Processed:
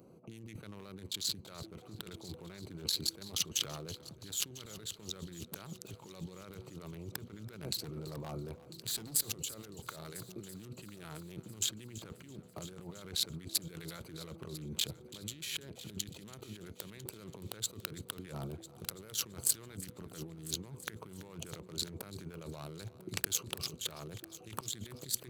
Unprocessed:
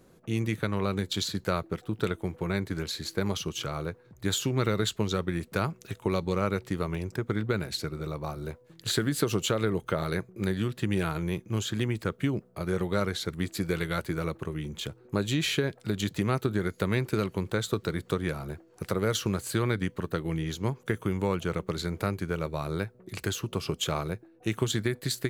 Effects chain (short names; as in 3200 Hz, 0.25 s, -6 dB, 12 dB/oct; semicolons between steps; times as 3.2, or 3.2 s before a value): Wiener smoothing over 25 samples; HPF 97 Hz 12 dB/oct; 7.69–9.22 hard clip -28.5 dBFS, distortion -22 dB; negative-ratio compressor -40 dBFS, ratio -1; pre-emphasis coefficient 0.8; on a send: multi-head echo 0.333 s, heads first and third, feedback 53%, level -18 dB; on the sum: gain +6.5 dB